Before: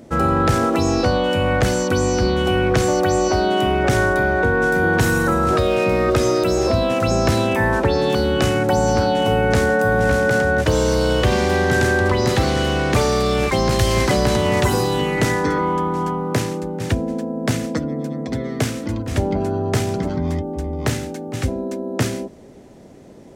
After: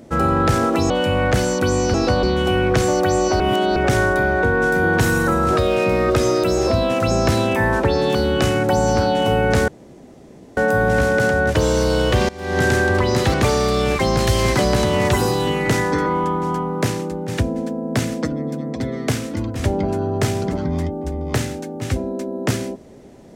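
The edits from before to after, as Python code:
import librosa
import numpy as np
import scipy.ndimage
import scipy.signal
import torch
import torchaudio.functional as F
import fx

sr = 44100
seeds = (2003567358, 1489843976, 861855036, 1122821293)

y = fx.edit(x, sr, fx.move(start_s=0.9, length_s=0.29, to_s=2.23),
    fx.reverse_span(start_s=3.4, length_s=0.36),
    fx.insert_room_tone(at_s=9.68, length_s=0.89),
    fx.fade_in_from(start_s=11.4, length_s=0.3, curve='qua', floor_db=-20.0),
    fx.cut(start_s=12.45, length_s=0.41), tone=tone)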